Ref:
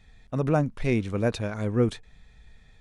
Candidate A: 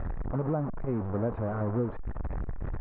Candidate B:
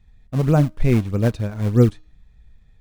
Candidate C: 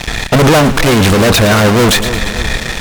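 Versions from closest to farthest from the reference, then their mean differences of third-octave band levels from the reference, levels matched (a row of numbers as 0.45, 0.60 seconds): B, A, C; 6.0, 8.5, 14.0 decibels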